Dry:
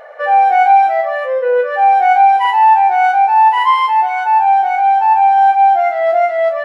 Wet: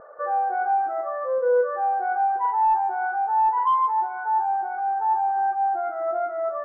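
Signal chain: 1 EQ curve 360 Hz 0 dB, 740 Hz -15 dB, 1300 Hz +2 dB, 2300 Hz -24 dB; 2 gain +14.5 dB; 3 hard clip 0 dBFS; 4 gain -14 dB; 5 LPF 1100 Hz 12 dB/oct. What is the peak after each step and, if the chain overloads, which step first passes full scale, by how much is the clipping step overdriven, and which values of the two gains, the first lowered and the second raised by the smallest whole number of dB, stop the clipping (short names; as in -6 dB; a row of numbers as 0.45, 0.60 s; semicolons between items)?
-8.5, +6.0, 0.0, -14.0, -14.0 dBFS; step 2, 6.0 dB; step 2 +8.5 dB, step 4 -8 dB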